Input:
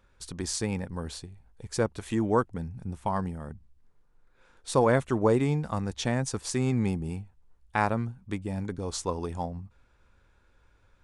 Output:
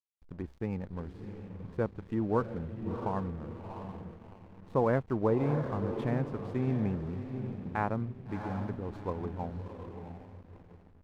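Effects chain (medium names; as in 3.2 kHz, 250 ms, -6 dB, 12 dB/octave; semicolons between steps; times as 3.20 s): treble shelf 5 kHz -7.5 dB; echo that smears into a reverb 684 ms, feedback 40%, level -7 dB; gate with hold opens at -41 dBFS; distance through air 480 m; hysteresis with a dead band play -43 dBFS; trim -3.5 dB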